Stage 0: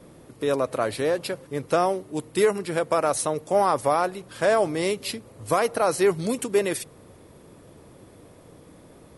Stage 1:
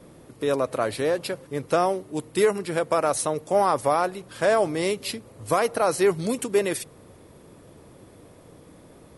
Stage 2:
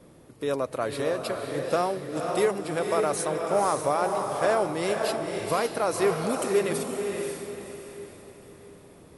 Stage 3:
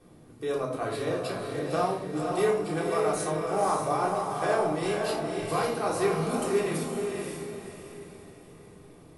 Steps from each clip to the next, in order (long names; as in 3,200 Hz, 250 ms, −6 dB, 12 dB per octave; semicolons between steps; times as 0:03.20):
no processing that can be heard
feedback delay with all-pass diffusion 526 ms, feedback 41%, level −3.5 dB; level −4 dB
rectangular room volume 660 cubic metres, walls furnished, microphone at 3.6 metres; level −7 dB